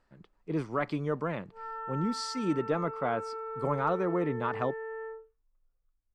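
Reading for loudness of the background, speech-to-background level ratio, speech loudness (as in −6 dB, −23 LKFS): −39.5 LKFS, 7.0 dB, −32.5 LKFS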